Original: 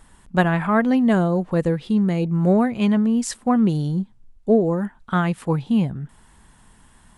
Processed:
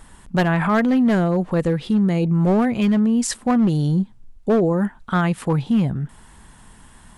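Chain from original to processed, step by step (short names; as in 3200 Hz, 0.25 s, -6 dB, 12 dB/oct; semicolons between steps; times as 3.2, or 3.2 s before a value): overloaded stage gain 13.5 dB; limiter -18 dBFS, peak gain reduction 4.5 dB; gain +5.5 dB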